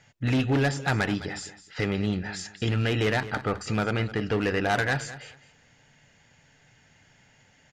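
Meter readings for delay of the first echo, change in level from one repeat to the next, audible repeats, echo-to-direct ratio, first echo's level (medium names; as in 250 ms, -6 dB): 210 ms, -13.5 dB, 2, -15.0 dB, -15.0 dB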